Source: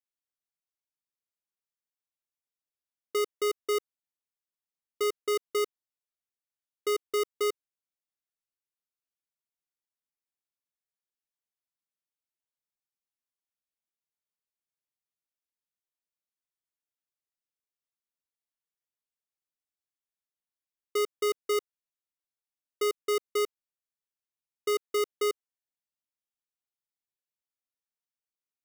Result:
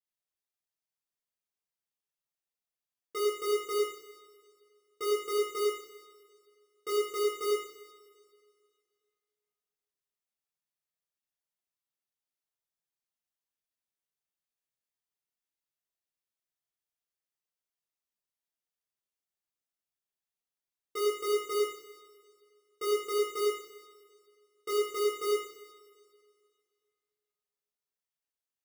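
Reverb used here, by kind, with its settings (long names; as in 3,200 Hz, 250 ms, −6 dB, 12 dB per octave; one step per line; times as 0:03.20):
coupled-rooms reverb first 0.65 s, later 2.3 s, from −18 dB, DRR −8 dB
level −9.5 dB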